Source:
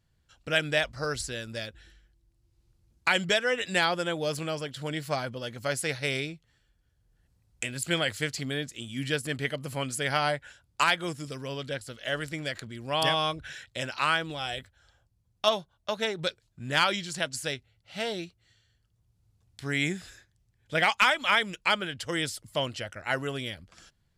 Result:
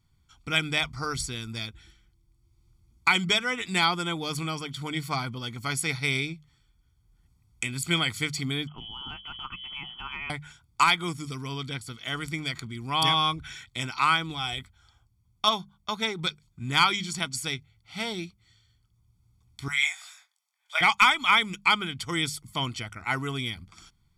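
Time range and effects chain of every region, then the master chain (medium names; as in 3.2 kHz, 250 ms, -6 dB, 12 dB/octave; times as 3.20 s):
8.67–10.30 s: frequency inversion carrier 3.2 kHz + compression 4:1, threshold -36 dBFS
19.68–20.81 s: steep high-pass 570 Hz 72 dB/octave + doubling 22 ms -5 dB
whole clip: hum notches 50/100/150/200 Hz; comb 0.9 ms, depth 88%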